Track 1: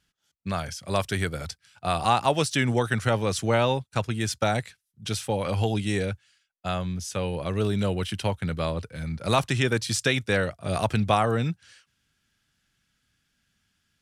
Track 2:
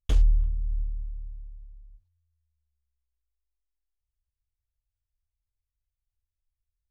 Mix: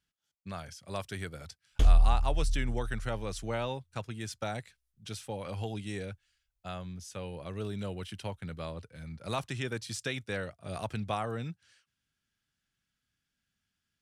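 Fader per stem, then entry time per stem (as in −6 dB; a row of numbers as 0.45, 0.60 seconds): −11.5, −0.5 decibels; 0.00, 1.70 seconds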